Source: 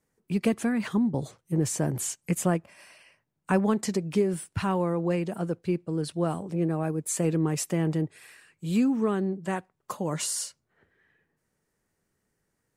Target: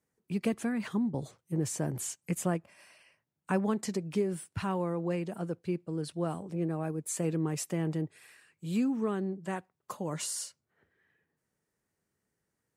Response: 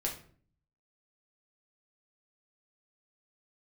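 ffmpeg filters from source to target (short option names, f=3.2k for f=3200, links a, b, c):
-af "highpass=53,volume=-5.5dB"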